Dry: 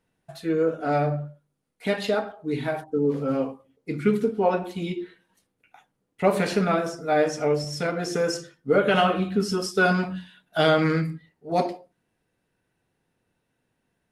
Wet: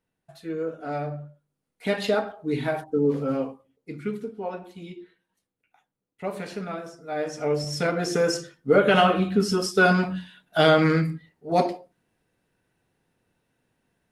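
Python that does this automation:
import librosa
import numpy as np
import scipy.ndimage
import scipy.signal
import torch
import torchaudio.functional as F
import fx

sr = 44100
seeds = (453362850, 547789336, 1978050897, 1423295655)

y = fx.gain(x, sr, db=fx.line((1.14, -7.0), (2.05, 1.0), (3.12, 1.0), (4.27, -10.5), (7.05, -10.5), (7.71, 2.0)))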